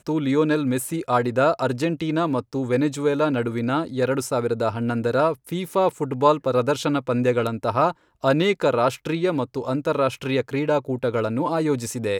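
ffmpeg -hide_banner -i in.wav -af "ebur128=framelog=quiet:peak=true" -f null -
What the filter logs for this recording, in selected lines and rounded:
Integrated loudness:
  I:         -22.6 LUFS
  Threshold: -32.6 LUFS
Loudness range:
  LRA:         1.8 LU
  Threshold: -42.6 LUFS
  LRA low:   -23.4 LUFS
  LRA high:  -21.6 LUFS
True peak:
  Peak:       -4.1 dBFS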